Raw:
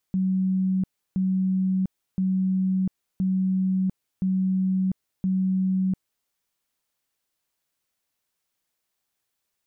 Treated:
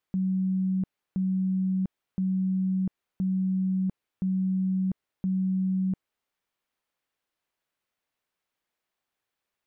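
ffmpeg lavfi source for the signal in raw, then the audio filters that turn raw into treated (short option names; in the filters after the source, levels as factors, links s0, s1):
-f lavfi -i "aevalsrc='0.1*sin(2*PI*188*mod(t,1.02))*lt(mod(t,1.02),131/188)':d=6.12:s=44100"
-af "bass=f=250:g=-4,treble=f=4000:g=-11"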